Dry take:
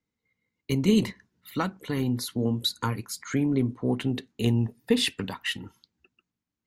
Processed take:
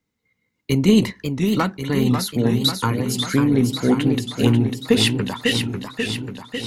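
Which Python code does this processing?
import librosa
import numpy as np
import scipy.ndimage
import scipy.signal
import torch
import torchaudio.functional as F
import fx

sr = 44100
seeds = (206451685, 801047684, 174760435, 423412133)

p1 = np.clip(10.0 ** (17.0 / 20.0) * x, -1.0, 1.0) / 10.0 ** (17.0 / 20.0)
p2 = x + (p1 * librosa.db_to_amplitude(-9.0))
p3 = fx.echo_warbled(p2, sr, ms=543, feedback_pct=64, rate_hz=2.8, cents=155, wet_db=-6.0)
y = p3 * librosa.db_to_amplitude(4.5)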